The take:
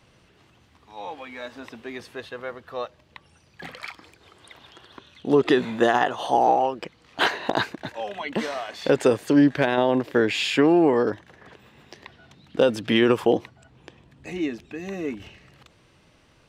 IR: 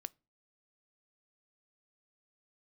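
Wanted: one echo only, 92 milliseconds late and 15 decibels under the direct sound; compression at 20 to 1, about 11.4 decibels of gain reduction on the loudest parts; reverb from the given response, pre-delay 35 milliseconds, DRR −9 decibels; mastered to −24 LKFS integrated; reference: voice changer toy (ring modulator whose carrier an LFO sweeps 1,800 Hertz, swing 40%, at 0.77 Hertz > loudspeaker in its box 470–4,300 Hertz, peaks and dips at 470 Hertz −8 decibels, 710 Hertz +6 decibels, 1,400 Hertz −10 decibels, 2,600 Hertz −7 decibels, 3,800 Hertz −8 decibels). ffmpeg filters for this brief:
-filter_complex "[0:a]acompressor=threshold=-24dB:ratio=20,aecho=1:1:92:0.178,asplit=2[link_01][link_02];[1:a]atrim=start_sample=2205,adelay=35[link_03];[link_02][link_03]afir=irnorm=-1:irlink=0,volume=13dB[link_04];[link_01][link_04]amix=inputs=2:normalize=0,aeval=exprs='val(0)*sin(2*PI*1800*n/s+1800*0.4/0.77*sin(2*PI*0.77*n/s))':channel_layout=same,highpass=470,equalizer=frequency=470:width_type=q:width=4:gain=-8,equalizer=frequency=710:width_type=q:width=4:gain=6,equalizer=frequency=1400:width_type=q:width=4:gain=-10,equalizer=frequency=2600:width_type=q:width=4:gain=-7,equalizer=frequency=3800:width_type=q:width=4:gain=-8,lowpass=frequency=4300:width=0.5412,lowpass=frequency=4300:width=1.3066,volume=3dB"

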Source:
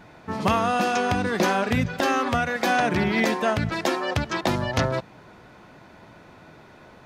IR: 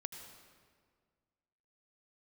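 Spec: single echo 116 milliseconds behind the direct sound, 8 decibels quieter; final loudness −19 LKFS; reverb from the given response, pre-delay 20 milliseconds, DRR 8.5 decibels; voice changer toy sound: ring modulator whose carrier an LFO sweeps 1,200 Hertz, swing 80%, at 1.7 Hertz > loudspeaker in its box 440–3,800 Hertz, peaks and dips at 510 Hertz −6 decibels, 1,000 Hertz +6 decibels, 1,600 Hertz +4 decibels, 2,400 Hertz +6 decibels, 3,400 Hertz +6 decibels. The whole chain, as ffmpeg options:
-filter_complex "[0:a]aecho=1:1:116:0.398,asplit=2[link_01][link_02];[1:a]atrim=start_sample=2205,adelay=20[link_03];[link_02][link_03]afir=irnorm=-1:irlink=0,volume=-6dB[link_04];[link_01][link_04]amix=inputs=2:normalize=0,aeval=exprs='val(0)*sin(2*PI*1200*n/s+1200*0.8/1.7*sin(2*PI*1.7*n/s))':channel_layout=same,highpass=440,equalizer=frequency=510:width_type=q:width=4:gain=-6,equalizer=frequency=1000:width_type=q:width=4:gain=6,equalizer=frequency=1600:width_type=q:width=4:gain=4,equalizer=frequency=2400:width_type=q:width=4:gain=6,equalizer=frequency=3400:width_type=q:width=4:gain=6,lowpass=frequency=3800:width=0.5412,lowpass=frequency=3800:width=1.3066,volume=1.5dB"

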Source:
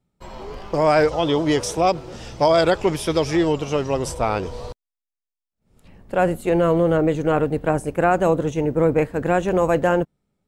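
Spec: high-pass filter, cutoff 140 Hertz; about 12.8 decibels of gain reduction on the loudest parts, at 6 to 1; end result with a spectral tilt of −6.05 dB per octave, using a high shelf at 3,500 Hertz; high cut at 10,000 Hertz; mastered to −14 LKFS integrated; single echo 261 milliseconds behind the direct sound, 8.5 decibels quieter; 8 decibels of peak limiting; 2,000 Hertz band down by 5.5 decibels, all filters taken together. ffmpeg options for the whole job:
ffmpeg -i in.wav -af "highpass=140,lowpass=10000,equalizer=frequency=2000:width_type=o:gain=-6.5,highshelf=frequency=3500:gain=-5.5,acompressor=threshold=-28dB:ratio=6,alimiter=limit=-23dB:level=0:latency=1,aecho=1:1:261:0.376,volume=19.5dB" out.wav

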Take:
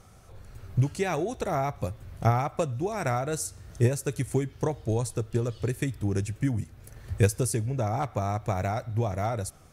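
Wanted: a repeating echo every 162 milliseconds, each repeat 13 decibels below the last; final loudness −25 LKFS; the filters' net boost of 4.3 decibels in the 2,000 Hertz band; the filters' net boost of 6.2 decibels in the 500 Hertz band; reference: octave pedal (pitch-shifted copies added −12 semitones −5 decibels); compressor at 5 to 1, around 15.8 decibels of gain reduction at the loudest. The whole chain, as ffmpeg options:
ffmpeg -i in.wav -filter_complex "[0:a]equalizer=frequency=500:width_type=o:gain=7.5,equalizer=frequency=2000:width_type=o:gain=5,acompressor=threshold=-31dB:ratio=5,aecho=1:1:162|324|486:0.224|0.0493|0.0108,asplit=2[link_01][link_02];[link_02]asetrate=22050,aresample=44100,atempo=2,volume=-5dB[link_03];[link_01][link_03]amix=inputs=2:normalize=0,volume=9.5dB" out.wav

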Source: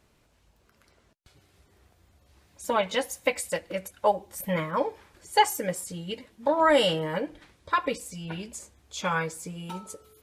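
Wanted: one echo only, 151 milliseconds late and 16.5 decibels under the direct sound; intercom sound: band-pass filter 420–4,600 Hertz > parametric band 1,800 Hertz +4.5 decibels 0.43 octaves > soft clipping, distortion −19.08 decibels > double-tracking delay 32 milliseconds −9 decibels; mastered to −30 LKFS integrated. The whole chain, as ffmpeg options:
ffmpeg -i in.wav -filter_complex "[0:a]highpass=420,lowpass=4600,equalizer=frequency=1800:width_type=o:width=0.43:gain=4.5,aecho=1:1:151:0.15,asoftclip=threshold=-12.5dB,asplit=2[link_01][link_02];[link_02]adelay=32,volume=-9dB[link_03];[link_01][link_03]amix=inputs=2:normalize=0,volume=-1.5dB" out.wav

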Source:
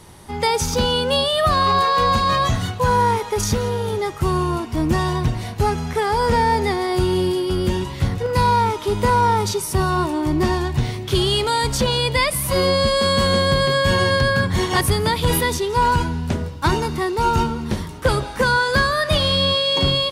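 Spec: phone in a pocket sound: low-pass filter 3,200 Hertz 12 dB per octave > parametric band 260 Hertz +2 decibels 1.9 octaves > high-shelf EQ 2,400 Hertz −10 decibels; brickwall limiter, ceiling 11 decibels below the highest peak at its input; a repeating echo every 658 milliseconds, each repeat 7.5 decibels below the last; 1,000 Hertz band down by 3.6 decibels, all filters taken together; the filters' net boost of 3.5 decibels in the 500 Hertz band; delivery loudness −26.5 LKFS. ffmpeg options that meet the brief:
ffmpeg -i in.wav -af "equalizer=frequency=500:width_type=o:gain=4,equalizer=frequency=1000:width_type=o:gain=-3.5,alimiter=limit=-16.5dB:level=0:latency=1,lowpass=3200,equalizer=frequency=260:width_type=o:width=1.9:gain=2,highshelf=frequency=2400:gain=-10,aecho=1:1:658|1316|1974|2632|3290:0.422|0.177|0.0744|0.0312|0.0131,volume=-2.5dB" out.wav

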